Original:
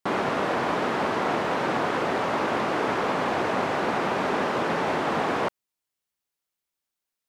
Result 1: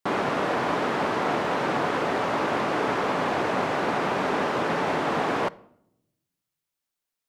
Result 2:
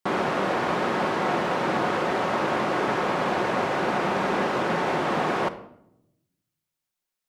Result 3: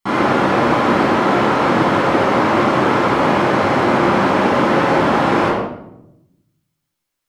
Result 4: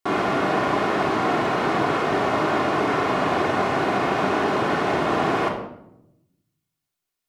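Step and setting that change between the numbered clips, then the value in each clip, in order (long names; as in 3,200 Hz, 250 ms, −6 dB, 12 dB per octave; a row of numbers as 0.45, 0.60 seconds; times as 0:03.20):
rectangular room, microphone at: 0.34, 0.97, 11, 3.3 metres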